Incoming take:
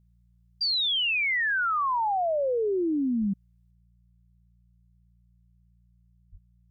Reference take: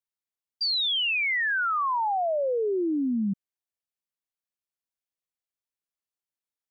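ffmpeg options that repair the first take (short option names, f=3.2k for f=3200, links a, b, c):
-filter_complex "[0:a]bandreject=f=58.4:t=h:w=4,bandreject=f=116.8:t=h:w=4,bandreject=f=175.2:t=h:w=4,asplit=3[a][b][c];[a]afade=t=out:st=3.2:d=0.02[d];[b]highpass=f=140:w=0.5412,highpass=f=140:w=1.3066,afade=t=in:st=3.2:d=0.02,afade=t=out:st=3.32:d=0.02[e];[c]afade=t=in:st=3.32:d=0.02[f];[d][e][f]amix=inputs=3:normalize=0,asplit=3[g][h][i];[g]afade=t=out:st=6.31:d=0.02[j];[h]highpass=f=140:w=0.5412,highpass=f=140:w=1.3066,afade=t=in:st=6.31:d=0.02,afade=t=out:st=6.43:d=0.02[k];[i]afade=t=in:st=6.43:d=0.02[l];[j][k][l]amix=inputs=3:normalize=0,asetnsamples=n=441:p=0,asendcmd='3.71 volume volume 7.5dB',volume=0dB"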